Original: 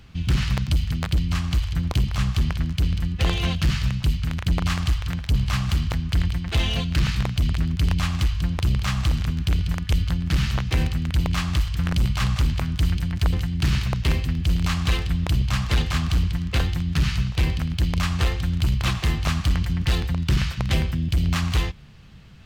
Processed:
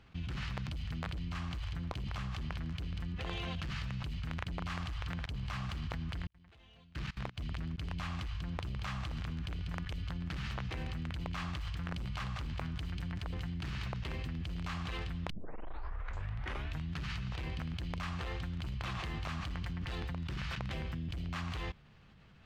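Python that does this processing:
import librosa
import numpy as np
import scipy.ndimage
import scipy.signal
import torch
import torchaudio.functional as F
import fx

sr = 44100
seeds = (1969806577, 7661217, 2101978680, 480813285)

y = fx.edit(x, sr, fx.fade_in_span(start_s=6.27, length_s=3.37),
    fx.tape_start(start_s=15.3, length_s=1.64), tone=tone)
y = fx.lowpass(y, sr, hz=1600.0, slope=6)
y = fx.low_shelf(y, sr, hz=330.0, db=-10.0)
y = fx.level_steps(y, sr, step_db=22)
y = F.gain(torch.from_numpy(y), 6.0).numpy()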